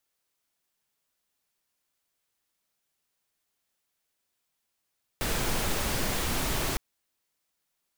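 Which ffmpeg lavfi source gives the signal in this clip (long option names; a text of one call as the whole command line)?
ffmpeg -f lavfi -i "anoisesrc=color=pink:amplitude=0.193:duration=1.56:sample_rate=44100:seed=1" out.wav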